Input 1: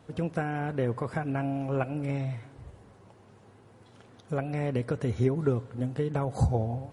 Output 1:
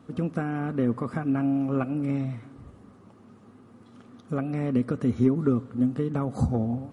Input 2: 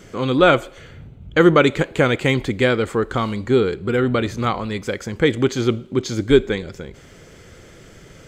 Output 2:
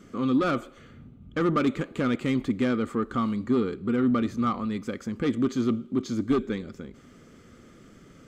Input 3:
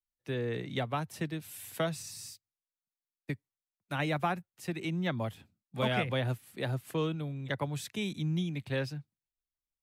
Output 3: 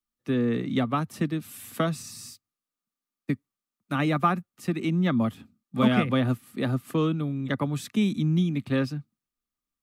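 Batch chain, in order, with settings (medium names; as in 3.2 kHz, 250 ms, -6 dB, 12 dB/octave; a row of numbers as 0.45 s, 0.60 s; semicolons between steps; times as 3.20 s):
saturation -12.5 dBFS; small resonant body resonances 240/1200 Hz, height 14 dB, ringing for 35 ms; normalise loudness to -27 LUFS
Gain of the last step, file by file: -2.5 dB, -12.0 dB, +2.5 dB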